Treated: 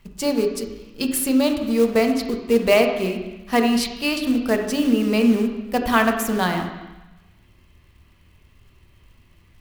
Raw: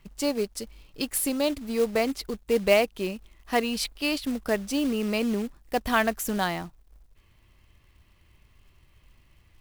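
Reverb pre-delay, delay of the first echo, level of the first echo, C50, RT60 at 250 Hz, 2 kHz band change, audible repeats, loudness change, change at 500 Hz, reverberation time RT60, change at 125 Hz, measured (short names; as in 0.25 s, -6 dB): 3 ms, none, none, 6.0 dB, 1.0 s, +5.0 dB, none, +6.5 dB, +6.0 dB, 1.0 s, +7.0 dB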